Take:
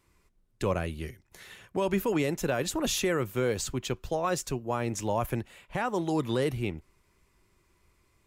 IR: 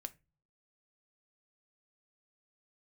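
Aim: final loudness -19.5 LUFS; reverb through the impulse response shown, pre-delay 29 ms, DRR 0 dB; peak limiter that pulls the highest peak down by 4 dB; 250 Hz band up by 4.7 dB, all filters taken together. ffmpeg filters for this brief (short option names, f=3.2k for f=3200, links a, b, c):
-filter_complex "[0:a]equalizer=f=250:t=o:g=6.5,alimiter=limit=-18dB:level=0:latency=1,asplit=2[a][b];[1:a]atrim=start_sample=2205,adelay=29[c];[b][c]afir=irnorm=-1:irlink=0,volume=3.5dB[d];[a][d]amix=inputs=2:normalize=0,volume=7dB"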